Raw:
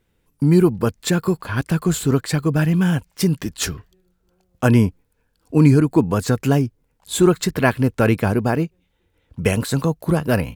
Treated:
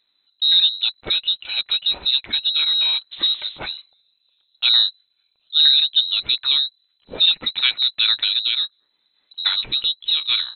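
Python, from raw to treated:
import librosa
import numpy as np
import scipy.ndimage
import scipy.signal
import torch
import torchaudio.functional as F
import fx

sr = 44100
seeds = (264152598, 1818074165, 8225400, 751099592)

y = fx.dmg_wind(x, sr, seeds[0], corner_hz=530.0, level_db=-28.0, at=(3.11, 3.58), fade=0.02)
y = fx.freq_invert(y, sr, carrier_hz=4000)
y = y * 10.0 ** (-2.5 / 20.0)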